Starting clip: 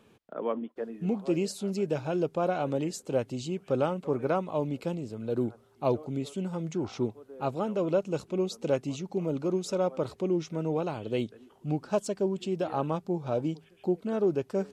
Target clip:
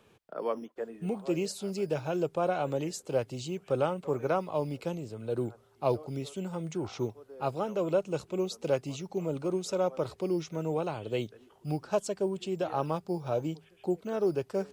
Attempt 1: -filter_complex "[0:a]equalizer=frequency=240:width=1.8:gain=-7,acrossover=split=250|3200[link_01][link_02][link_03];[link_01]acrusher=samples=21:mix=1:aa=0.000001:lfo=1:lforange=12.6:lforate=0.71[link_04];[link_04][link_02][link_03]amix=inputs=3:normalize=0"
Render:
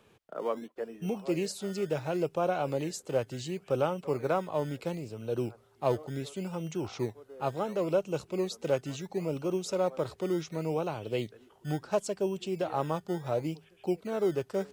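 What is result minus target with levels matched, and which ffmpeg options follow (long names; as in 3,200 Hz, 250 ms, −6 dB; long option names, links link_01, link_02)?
sample-and-hold swept by an LFO: distortion +10 dB
-filter_complex "[0:a]equalizer=frequency=240:width=1.8:gain=-7,acrossover=split=250|3200[link_01][link_02][link_03];[link_01]acrusher=samples=7:mix=1:aa=0.000001:lfo=1:lforange=4.2:lforate=0.71[link_04];[link_04][link_02][link_03]amix=inputs=3:normalize=0"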